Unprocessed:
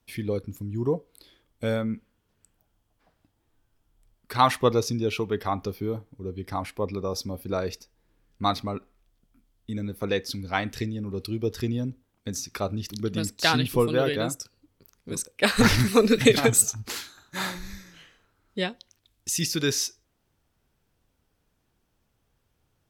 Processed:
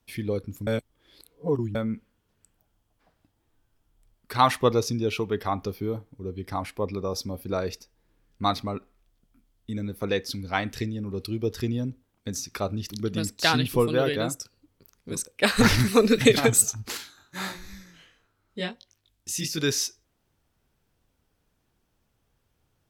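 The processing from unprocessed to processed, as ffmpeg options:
-filter_complex "[0:a]asettb=1/sr,asplit=3[s0][s1][s2];[s0]atrim=end=16.974[s3];[s1]atrim=start=16.97:end=19.58,asetpts=PTS-STARTPTS,afade=t=in:d=0.004:c=qsin,afade=t=out:st=2.606:d=0.004:c=qsin,flanger=delay=18.5:depth=4.4:speed=1.5[s4];[s2]atrim=start=19.576[s5];[s3][s4]acrossfade=d=0.004:c1=hsin:c2=qsin[s6];[s6][s5]acrossfade=d=0.004:c1=qsin:c2=hsin,asplit=3[s7][s8][s9];[s7]atrim=end=0.672[s10];[s8]atrim=start=0.668:end=1.752,asetpts=PTS-STARTPTS,areverse[s11];[s9]atrim=start=1.748[s12];[s10][s11]acrossfade=d=0.004:c1=hsin:c2=hsin[s13];[s13][s12]acrossfade=d=0.004:c1=hsin:c2=hsin"

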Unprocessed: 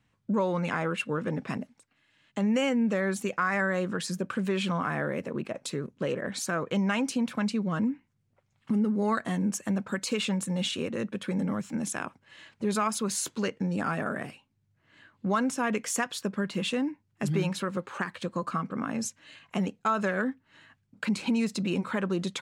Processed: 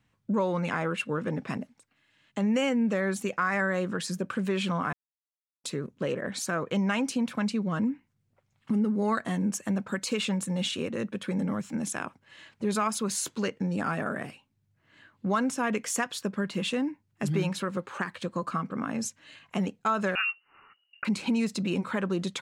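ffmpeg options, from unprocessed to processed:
-filter_complex "[0:a]asettb=1/sr,asplit=3[s0][s1][s2];[s0]atrim=end=20.154[s3];[s1]atrim=start=20.15:end=21.05,asetpts=PTS-STARTPTS,afade=t=in:d=0.004:c=qsin,afade=t=out:st=0.896:d=0.004:c=qsin,lowpass=f=2600:t=q:w=0.5098,lowpass=f=2600:t=q:w=0.6013,lowpass=f=2600:t=q:w=0.9,lowpass=f=2600:t=q:w=2.563,afreqshift=-3000[s4];[s2]atrim=start=21.046[s5];[s3][s4]acrossfade=d=0.004:c1=hsin:c2=qsin[s6];[s6][s5]acrossfade=d=0.004:c1=qsin:c2=hsin,asplit=3[s7][s8][s9];[s7]atrim=end=4.93,asetpts=PTS-STARTPTS,afade=t=out:st=4.926:d=0.004:c=hsin[s10];[s8]atrim=start=4.93:end=5.64,asetpts=PTS-STARTPTS,volume=0[s11];[s9]atrim=start=5.64,asetpts=PTS-STARTPTS,afade=t=in:d=0.004:c=hsin[s12];[s10][s11][s12]concat=n=3:v=0:a=1"

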